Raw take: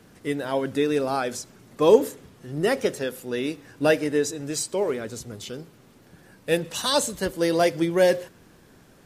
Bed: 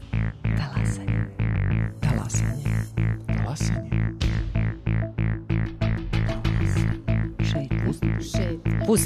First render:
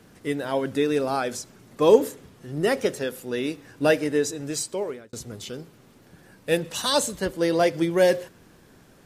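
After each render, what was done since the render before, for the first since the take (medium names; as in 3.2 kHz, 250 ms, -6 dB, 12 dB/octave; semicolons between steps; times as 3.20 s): 4.40–5.13 s: fade out equal-power; 7.16–7.74 s: treble shelf 6.1 kHz -6.5 dB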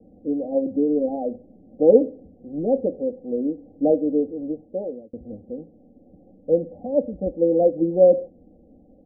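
steep low-pass 740 Hz 96 dB/octave; comb 3.8 ms, depth 93%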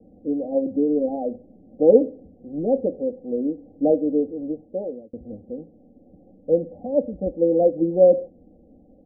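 no audible change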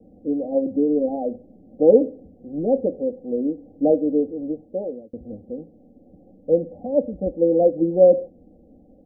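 trim +1 dB; peak limiter -3 dBFS, peak gain reduction 2 dB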